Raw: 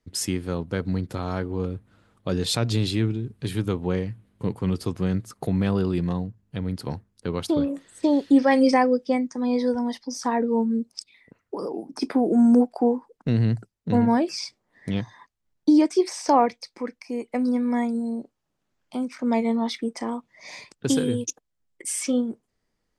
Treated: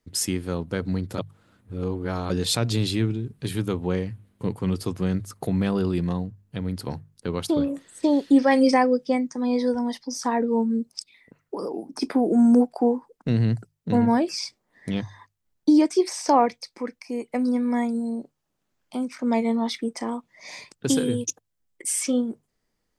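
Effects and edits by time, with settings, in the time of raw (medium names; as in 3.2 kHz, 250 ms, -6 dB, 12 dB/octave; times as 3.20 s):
1.18–2.30 s: reverse
whole clip: treble shelf 8.5 kHz +6 dB; hum notches 50/100/150 Hz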